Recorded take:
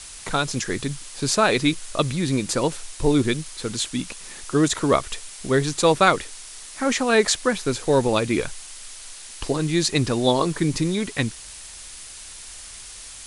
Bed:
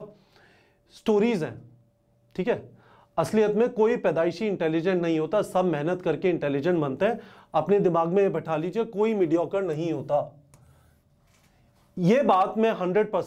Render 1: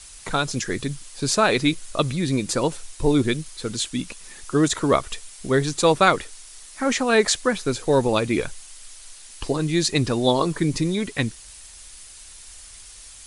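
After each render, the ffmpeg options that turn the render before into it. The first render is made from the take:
-af "afftdn=nr=6:nf=-40"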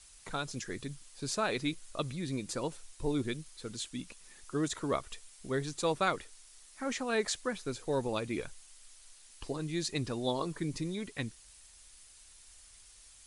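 -af "volume=-13.5dB"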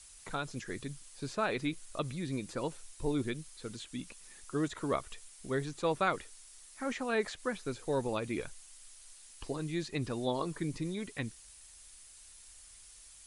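-filter_complex "[0:a]aemphasis=mode=production:type=cd,acrossover=split=2900[a][b];[b]acompressor=threshold=-51dB:ratio=4:attack=1:release=60[c];[a][c]amix=inputs=2:normalize=0"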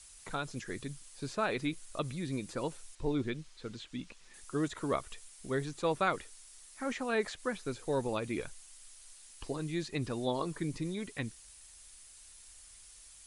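-filter_complex "[0:a]asettb=1/sr,asplit=3[a][b][c];[a]atrim=end=2.954[d];[b]atrim=start=2.95:end=4.34,asetpts=PTS-STARTPTS,afade=t=in:d=0.004:c=qsin,afade=t=out:st=1.386:d=0.004:c=qsin,lowpass=5k[e];[c]atrim=start=4.336[f];[d][e]acrossfade=d=0.004:c1=hsin:c2=qsin[g];[g][f]acrossfade=d=0.004:c1=qsin:c2=hsin"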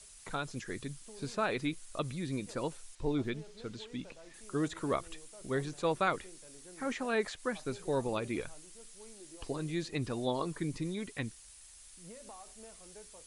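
-filter_complex "[1:a]volume=-31.5dB[a];[0:a][a]amix=inputs=2:normalize=0"

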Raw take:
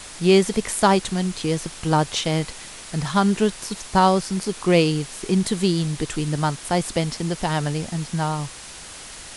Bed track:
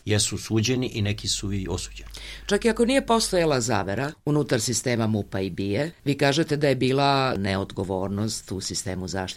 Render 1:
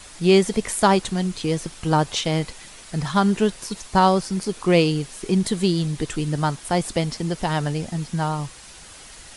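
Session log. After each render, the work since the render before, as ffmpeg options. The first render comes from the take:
-af "afftdn=nr=6:nf=-39"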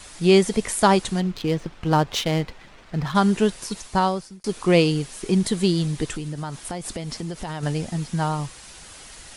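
-filter_complex "[0:a]asettb=1/sr,asplit=3[a][b][c];[a]atrim=end=1.204[d];[b]atrim=start=1.2:end=3.15,asetpts=PTS-STARTPTS,afade=t=in:d=0.004:c=qsin,afade=t=out:st=1.946:d=0.004:c=qsin,adynamicsmooth=sensitivity=5:basefreq=2k[e];[c]atrim=start=3.146[f];[d][e]acrossfade=d=0.004:c1=hsin:c2=qsin[g];[g][f]acrossfade=d=0.004:c1=qsin:c2=hsin,asettb=1/sr,asplit=3[h][i][j];[h]atrim=end=6.164[k];[i]atrim=start=6.16:end=7.63,asetpts=PTS-STARTPTS,afade=t=in:d=0.004:c=qsin,afade=t=out:st=1.466:d=0.004:c=qsin,acompressor=threshold=-26dB:ratio=10:attack=3.2:release=140:knee=1:detection=peak[l];[j]atrim=start=7.626[m];[k][l]acrossfade=d=0.004:c1=hsin:c2=qsin[n];[n][m]acrossfade=d=0.004:c1=qsin:c2=hsin,asplit=2[o][p];[o]atrim=end=4.44,asetpts=PTS-STARTPTS,afade=t=out:st=3.76:d=0.68[q];[p]atrim=start=4.44,asetpts=PTS-STARTPTS,afade=t=in:d=0.004:c=hsin[r];[q][r]concat=n=2:v=0:a=1"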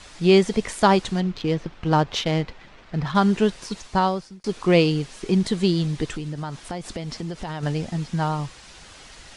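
-af "lowpass=5.9k"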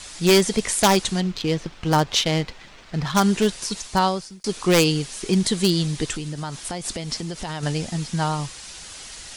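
-af "aeval=exprs='0.316*(abs(mod(val(0)/0.316+3,4)-2)-1)':c=same,crystalizer=i=3:c=0"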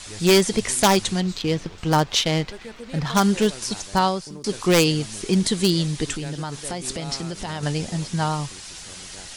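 -filter_complex "[1:a]volume=-18dB[a];[0:a][a]amix=inputs=2:normalize=0"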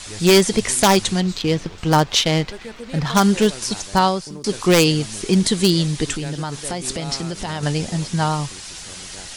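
-af "volume=3.5dB,alimiter=limit=-2dB:level=0:latency=1"

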